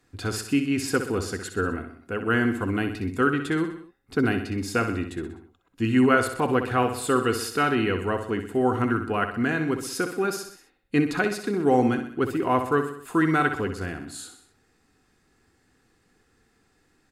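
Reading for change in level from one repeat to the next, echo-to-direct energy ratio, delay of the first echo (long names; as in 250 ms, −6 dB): −5.5 dB, −7.5 dB, 63 ms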